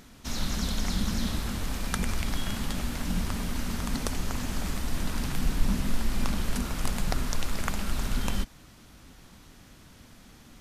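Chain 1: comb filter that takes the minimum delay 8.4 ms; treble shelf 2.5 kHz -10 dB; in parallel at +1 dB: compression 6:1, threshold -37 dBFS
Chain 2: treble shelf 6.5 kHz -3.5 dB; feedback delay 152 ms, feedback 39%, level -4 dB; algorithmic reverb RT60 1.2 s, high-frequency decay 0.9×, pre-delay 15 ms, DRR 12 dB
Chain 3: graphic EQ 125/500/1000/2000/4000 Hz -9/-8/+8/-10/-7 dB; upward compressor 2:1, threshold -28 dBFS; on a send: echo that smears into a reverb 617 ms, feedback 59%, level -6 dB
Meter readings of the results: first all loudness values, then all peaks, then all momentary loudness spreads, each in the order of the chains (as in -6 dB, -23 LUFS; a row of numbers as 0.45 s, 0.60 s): -32.5 LUFS, -30.5 LUFS, -34.0 LUFS; -10.0 dBFS, -9.0 dBFS, -10.5 dBFS; 19 LU, 3 LU, 8 LU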